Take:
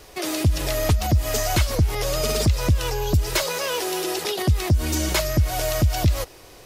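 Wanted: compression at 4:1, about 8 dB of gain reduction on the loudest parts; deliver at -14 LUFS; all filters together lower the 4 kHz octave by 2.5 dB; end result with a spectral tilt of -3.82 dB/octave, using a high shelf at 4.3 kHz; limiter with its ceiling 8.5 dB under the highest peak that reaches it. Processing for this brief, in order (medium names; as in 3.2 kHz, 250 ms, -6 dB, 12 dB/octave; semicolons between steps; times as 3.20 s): peaking EQ 4 kHz -5.5 dB; treble shelf 4.3 kHz +3.5 dB; compression 4:1, threshold -23 dBFS; trim +15.5 dB; peak limiter -5 dBFS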